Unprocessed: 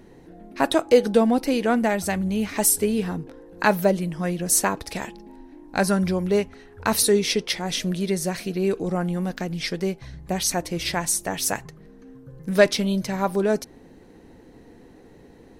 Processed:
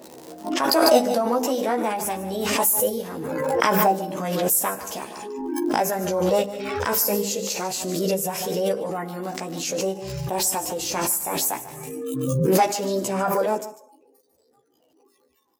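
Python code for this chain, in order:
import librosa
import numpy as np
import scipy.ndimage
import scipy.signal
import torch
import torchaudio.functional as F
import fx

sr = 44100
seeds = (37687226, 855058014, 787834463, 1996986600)

p1 = fx.dmg_crackle(x, sr, seeds[0], per_s=55.0, level_db=-32.0)
p2 = fx.chorus_voices(p1, sr, voices=6, hz=0.32, base_ms=14, depth_ms=2.0, mix_pct=45)
p3 = fx.rider(p2, sr, range_db=3, speed_s=0.5)
p4 = p2 + F.gain(torch.from_numpy(p3), 0.0).numpy()
p5 = fx.dynamic_eq(p4, sr, hz=3000.0, q=1.8, threshold_db=-41.0, ratio=4.0, max_db=-5)
p6 = fx.rev_schroeder(p5, sr, rt60_s=0.96, comb_ms=31, drr_db=16.5)
p7 = fx.noise_reduce_blind(p6, sr, reduce_db=30)
p8 = fx.peak_eq(p7, sr, hz=1700.0, db=-8.5, octaves=1.3)
p9 = fx.formant_shift(p8, sr, semitones=4)
p10 = scipy.signal.sosfilt(scipy.signal.bessel(2, 290.0, 'highpass', norm='mag', fs=sr, output='sos'), p9)
p11 = fx.hum_notches(p10, sr, base_hz=50, count=9)
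p12 = p11 + fx.echo_single(p11, sr, ms=147, db=-15.0, dry=0)
p13 = fx.pre_swell(p12, sr, db_per_s=27.0)
y = F.gain(torch.from_numpy(p13), -3.0).numpy()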